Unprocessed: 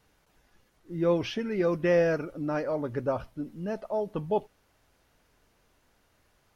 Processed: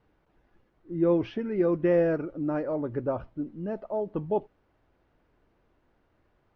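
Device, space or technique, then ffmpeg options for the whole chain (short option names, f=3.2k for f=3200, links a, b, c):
phone in a pocket: -af "lowpass=3.8k,equalizer=f=330:t=o:w=0.35:g=5.5,highshelf=f=2.1k:g=-12"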